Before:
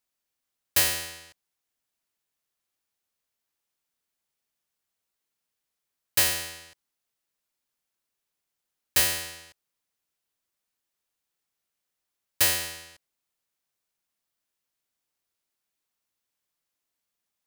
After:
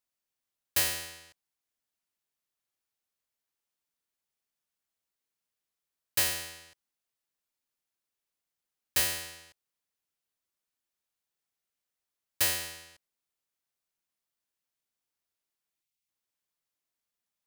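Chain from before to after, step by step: spectral delete 15.82–16.08, 210–1900 Hz; gain -5 dB

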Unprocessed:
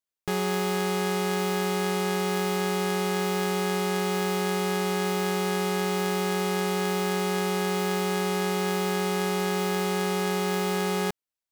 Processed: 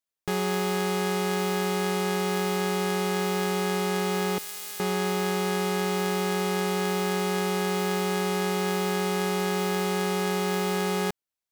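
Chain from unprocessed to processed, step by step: 4.38–4.8 differentiator

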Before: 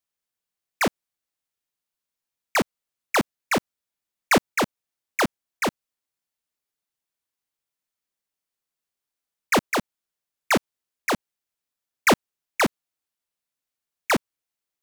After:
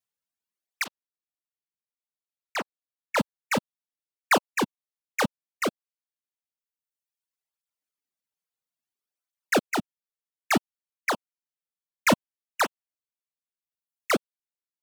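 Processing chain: reverb removal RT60 1.3 s; 0.84–3.17 high shelf 4600 Hz -12 dB; tape flanging out of phase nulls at 0.59 Hz, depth 3.5 ms

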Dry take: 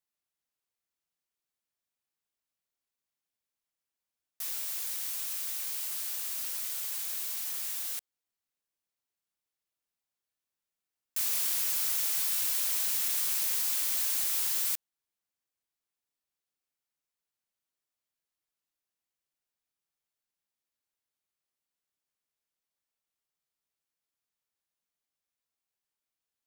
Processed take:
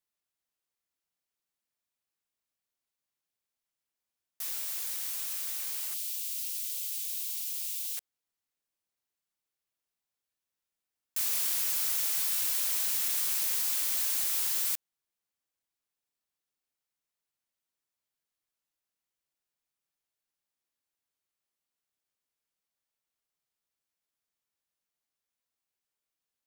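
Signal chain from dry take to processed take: 5.94–7.97 inverse Chebyshev high-pass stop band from 970 Hz, stop band 50 dB

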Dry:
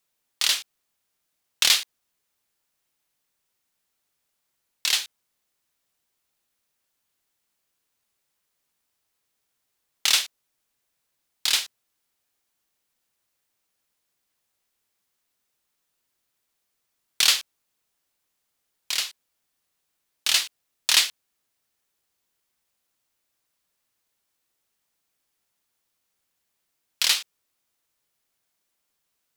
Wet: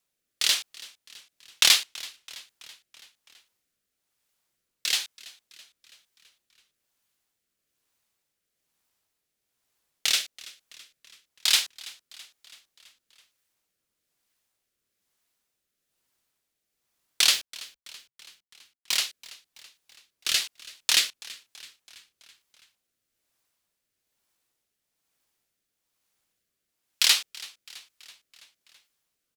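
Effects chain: rotary speaker horn 1.1 Hz; 17.33–18.97 companded quantiser 4-bit; frequency-shifting echo 0.33 s, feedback 59%, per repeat -72 Hz, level -20.5 dB; gain +1.5 dB

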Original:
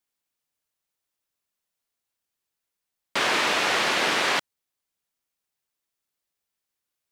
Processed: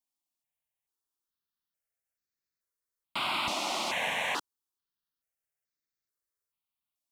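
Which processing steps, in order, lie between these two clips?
step phaser 2.3 Hz 450–3000 Hz; gain -5 dB

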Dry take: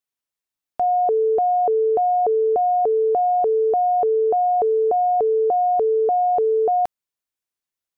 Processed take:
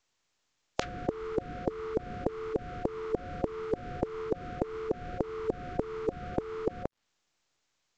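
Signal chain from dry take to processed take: spectral contrast lowered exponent 0.32; formant shift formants -5 st; treble ducked by the level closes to 510 Hz, closed at -16.5 dBFS; compressor 6:1, threshold -26 dBFS, peak gain reduction 8 dB; µ-law 128 kbps 16000 Hz

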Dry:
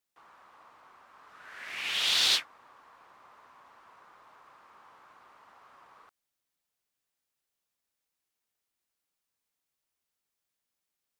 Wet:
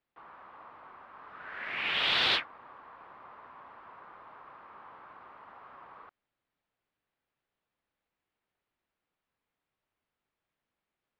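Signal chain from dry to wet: air absorption 430 m; gain +8 dB

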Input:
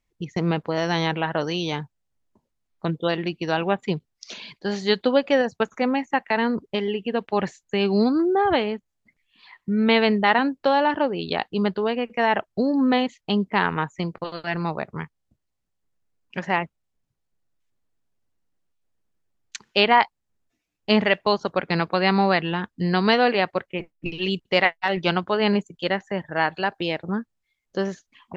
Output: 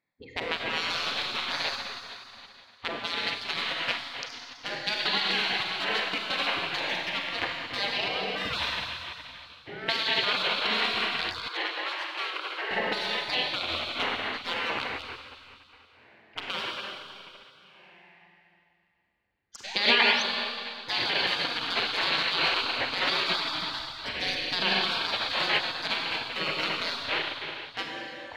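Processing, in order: Wiener smoothing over 15 samples; Schroeder reverb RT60 2.6 s, combs from 32 ms, DRR 0.5 dB; limiter -12 dBFS, peak gain reduction 10 dB; 19.65–20.22 painted sound rise 630–6300 Hz -19 dBFS; band shelf 2800 Hz +11.5 dB; spectral gate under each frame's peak -15 dB weak; 11.48–12.71 rippled Chebyshev high-pass 310 Hz, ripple 6 dB

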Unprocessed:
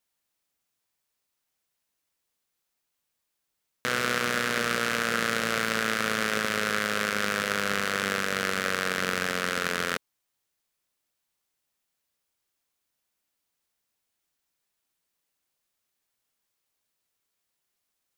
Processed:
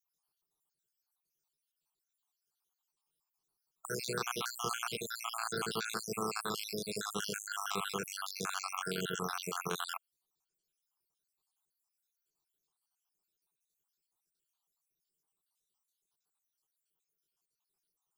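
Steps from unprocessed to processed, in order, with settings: random spectral dropouts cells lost 69%; fixed phaser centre 380 Hz, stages 8

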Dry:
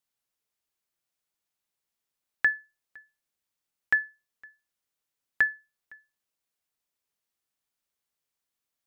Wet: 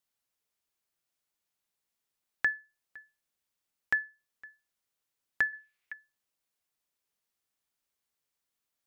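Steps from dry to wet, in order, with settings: 5.53–5.93 bell 2300 Hz +14 dB 1.1 oct; in parallel at 0 dB: compressor, threshold -37 dBFS, peak gain reduction 17 dB; on the sum: gain -6 dB

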